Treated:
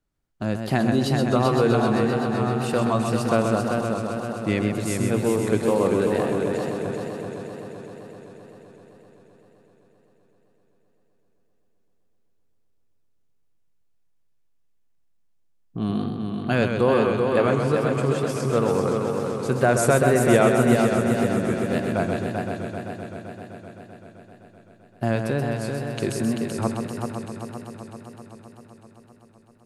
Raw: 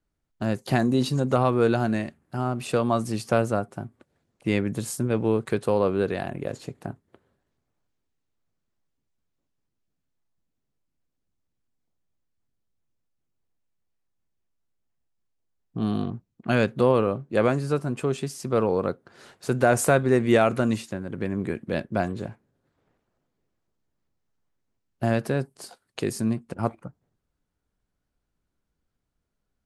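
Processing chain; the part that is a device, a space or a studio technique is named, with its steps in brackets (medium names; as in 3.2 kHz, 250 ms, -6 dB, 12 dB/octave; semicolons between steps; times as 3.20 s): multi-head tape echo (multi-head delay 129 ms, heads first and third, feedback 73%, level -6 dB; wow and flutter)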